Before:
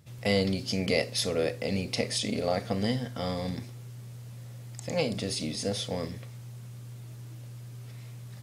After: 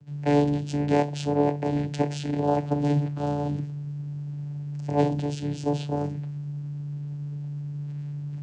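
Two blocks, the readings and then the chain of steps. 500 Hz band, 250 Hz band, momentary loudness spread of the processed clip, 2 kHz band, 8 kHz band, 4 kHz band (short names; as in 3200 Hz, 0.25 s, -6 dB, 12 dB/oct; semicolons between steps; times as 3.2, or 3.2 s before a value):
+3.0 dB, +6.5 dB, 10 LU, -4.5 dB, -8.5 dB, -9.5 dB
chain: dynamic EQ 560 Hz, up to +6 dB, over -41 dBFS, Q 2.4; vocoder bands 8, saw 145 Hz; gain +3.5 dB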